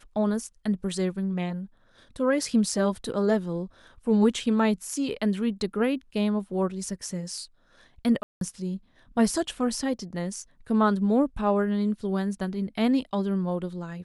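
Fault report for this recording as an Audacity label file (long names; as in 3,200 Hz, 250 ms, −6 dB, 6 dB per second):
8.230000	8.410000	drop-out 182 ms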